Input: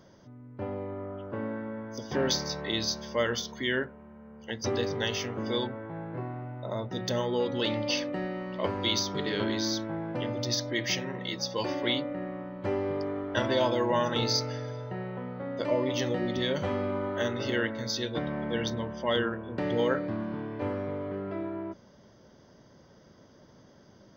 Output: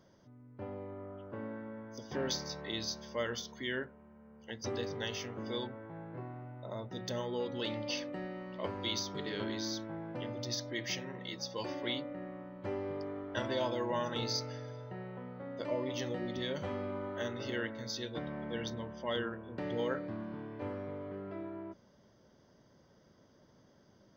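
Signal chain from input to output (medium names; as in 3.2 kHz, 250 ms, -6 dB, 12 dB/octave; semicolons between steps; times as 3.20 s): dynamic bell 8.1 kHz, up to +5 dB, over -59 dBFS, Q 3.8; trim -8 dB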